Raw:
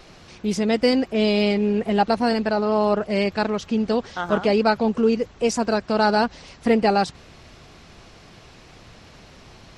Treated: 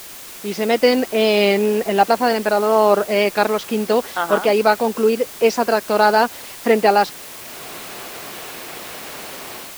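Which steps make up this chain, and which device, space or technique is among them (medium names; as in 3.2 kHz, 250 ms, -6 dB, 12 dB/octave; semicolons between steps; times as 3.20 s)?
dictaphone (band-pass 340–4100 Hz; level rider gain up to 16 dB; wow and flutter; white noise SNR 18 dB); trim -1 dB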